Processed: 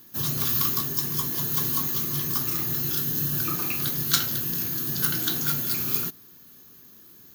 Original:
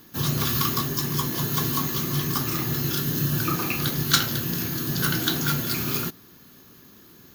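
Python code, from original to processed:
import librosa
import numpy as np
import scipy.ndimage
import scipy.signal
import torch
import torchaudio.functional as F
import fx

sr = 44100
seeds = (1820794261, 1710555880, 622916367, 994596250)

y = fx.high_shelf(x, sr, hz=6400.0, db=10.5)
y = y * librosa.db_to_amplitude(-6.5)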